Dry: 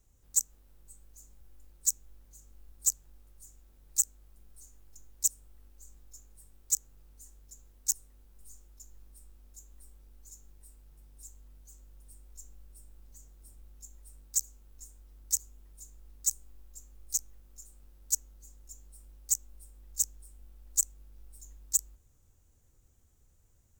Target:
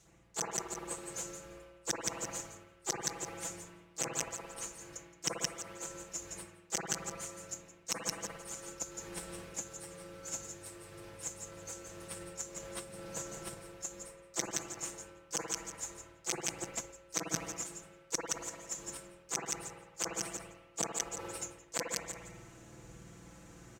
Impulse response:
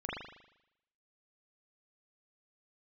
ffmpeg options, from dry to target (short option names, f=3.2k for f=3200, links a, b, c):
-filter_complex "[0:a]crystalizer=i=3:c=0,acontrast=83,asplit=2[a][b];[b]aecho=0:1:171|342|513:0.355|0.071|0.0142[c];[a][c]amix=inputs=2:normalize=0,aeval=exprs='clip(val(0),-1,0.501)':c=same,areverse,acompressor=threshold=-33dB:ratio=10,areverse[d];[1:a]atrim=start_sample=2205,asetrate=33516,aresample=44100[e];[d][e]afir=irnorm=-1:irlink=0,aeval=exprs='0.1*(cos(1*acos(clip(val(0)/0.1,-1,1)))-cos(1*PI/2))+0.0282*(cos(3*acos(clip(val(0)/0.1,-1,1)))-cos(3*PI/2))+0.00251*(cos(5*acos(clip(val(0)/0.1,-1,1)))-cos(5*PI/2))+0.00141*(cos(6*acos(clip(val(0)/0.1,-1,1)))-cos(6*PI/2))':c=same,highpass=120,lowpass=4.2k,aecho=1:1:6:0.85,volume=17.5dB"